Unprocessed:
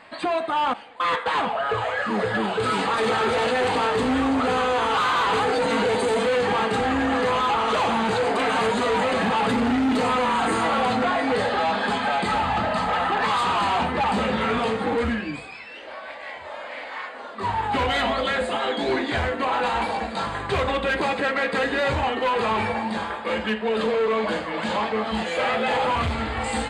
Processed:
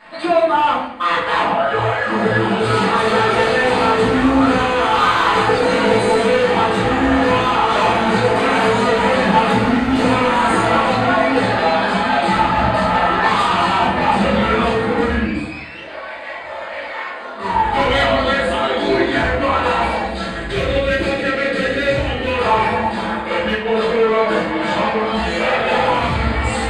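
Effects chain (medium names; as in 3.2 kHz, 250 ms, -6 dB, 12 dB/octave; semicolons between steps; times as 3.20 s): 20.01–22.34 s: peaking EQ 970 Hz -14 dB 0.74 oct; simulated room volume 120 m³, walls mixed, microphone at 2.7 m; trim -3.5 dB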